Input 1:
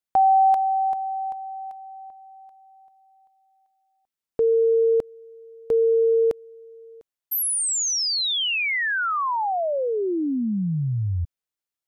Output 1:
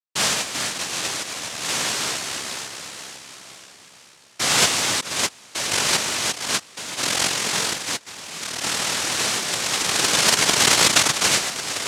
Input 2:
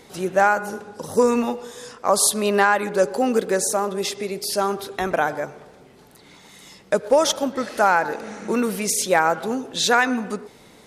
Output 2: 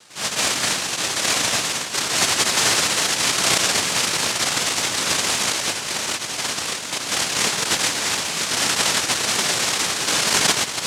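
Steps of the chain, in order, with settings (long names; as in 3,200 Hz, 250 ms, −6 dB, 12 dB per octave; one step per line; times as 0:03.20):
low-pass filter 1,200 Hz
spectral tilt −3.5 dB per octave
delay with pitch and tempo change per echo 617 ms, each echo −2 semitones, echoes 3, each echo −6 dB
brickwall limiter −12.5 dBFS
reverb whose tail is shaped and stops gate 290 ms rising, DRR −4 dB
cochlear-implant simulation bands 1
level −5.5 dB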